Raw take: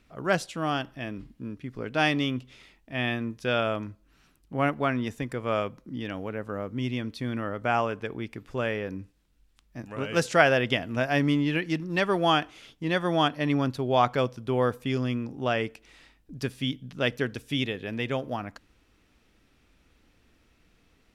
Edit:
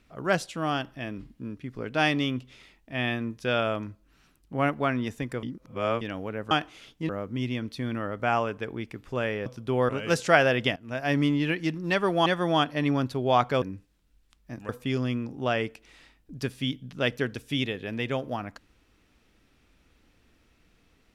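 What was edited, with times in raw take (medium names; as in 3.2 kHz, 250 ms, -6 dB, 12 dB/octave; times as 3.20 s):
5.43–6.01 s: reverse
8.88–9.95 s: swap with 14.26–14.69 s
10.82–11.23 s: fade in, from -21 dB
12.32–12.90 s: move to 6.51 s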